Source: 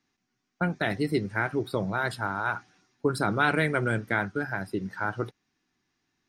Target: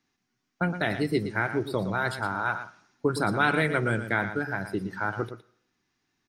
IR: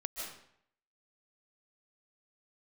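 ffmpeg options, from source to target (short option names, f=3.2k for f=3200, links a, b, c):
-filter_complex "[0:a]aecho=1:1:115:0.299,asplit=2[a][b];[1:a]atrim=start_sample=2205,lowpass=9.2k,lowshelf=f=370:g=-10.5[c];[b][c]afir=irnorm=-1:irlink=0,volume=-22.5dB[d];[a][d]amix=inputs=2:normalize=0"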